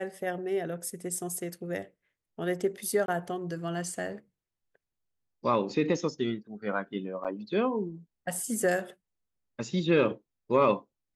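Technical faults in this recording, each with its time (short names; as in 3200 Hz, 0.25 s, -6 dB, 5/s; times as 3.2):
3.06–3.08 gap 22 ms
7.24–7.25 gap 7.2 ms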